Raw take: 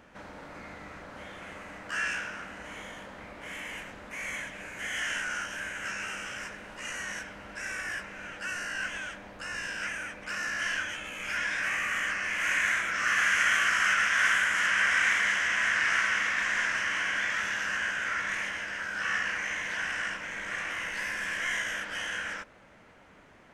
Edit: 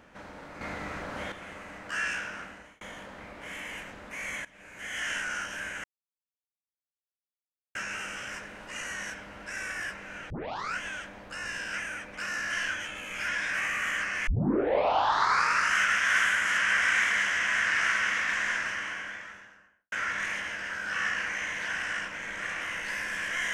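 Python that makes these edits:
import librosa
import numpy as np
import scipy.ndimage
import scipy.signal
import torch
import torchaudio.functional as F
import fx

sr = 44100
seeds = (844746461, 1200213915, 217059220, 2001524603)

y = fx.studio_fade_out(x, sr, start_s=16.41, length_s=1.6)
y = fx.edit(y, sr, fx.clip_gain(start_s=0.61, length_s=0.71, db=7.5),
    fx.fade_out_span(start_s=2.41, length_s=0.4),
    fx.fade_in_from(start_s=4.45, length_s=0.65, floor_db=-18.5),
    fx.insert_silence(at_s=5.84, length_s=1.91),
    fx.tape_start(start_s=8.39, length_s=0.47),
    fx.tape_start(start_s=12.36, length_s=1.49), tone=tone)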